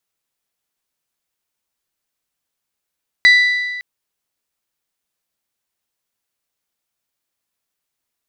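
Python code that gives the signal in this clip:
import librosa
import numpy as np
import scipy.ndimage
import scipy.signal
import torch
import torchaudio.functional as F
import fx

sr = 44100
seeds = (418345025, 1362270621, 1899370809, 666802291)

y = fx.strike_metal(sr, length_s=0.56, level_db=-5.0, body='bell', hz=1980.0, decay_s=1.59, tilt_db=9, modes=5)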